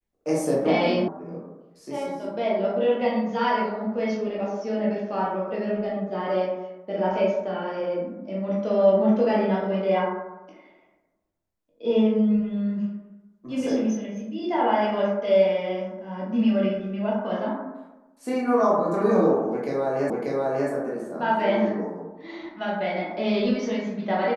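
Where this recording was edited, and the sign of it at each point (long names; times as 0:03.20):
0:01.08: cut off before it has died away
0:20.10: the same again, the last 0.59 s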